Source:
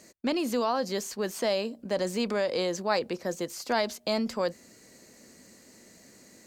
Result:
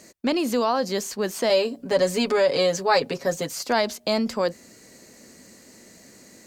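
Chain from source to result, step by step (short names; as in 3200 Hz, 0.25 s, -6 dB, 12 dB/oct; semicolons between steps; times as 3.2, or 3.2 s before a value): 1.49–3.63 comb 7.2 ms, depth 93%; gain +5 dB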